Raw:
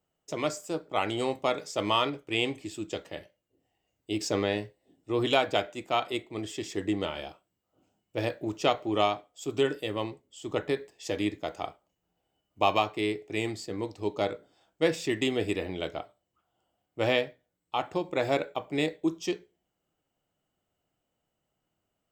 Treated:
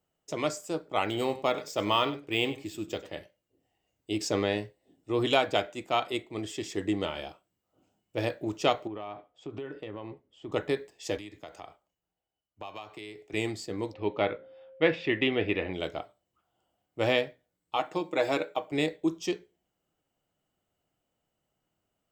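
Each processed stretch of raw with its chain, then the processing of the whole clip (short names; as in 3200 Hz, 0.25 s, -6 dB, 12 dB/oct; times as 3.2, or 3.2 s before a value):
1.04–3.13 echo 97 ms -16 dB + decimation joined by straight lines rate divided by 2×
8.87–10.52 LPF 2200 Hz + compressor 12:1, threshold -34 dBFS
11.17–13.34 bell 220 Hz -5 dB 2.7 oct + compressor 5:1, threshold -40 dBFS + three-band expander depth 40%
13.92–15.73 LPF 2700 Hz 24 dB/oct + high shelf 2100 Hz +11.5 dB + whine 530 Hz -49 dBFS
17.76–18.72 HPF 220 Hz + comb 6.4 ms, depth 50%
whole clip: dry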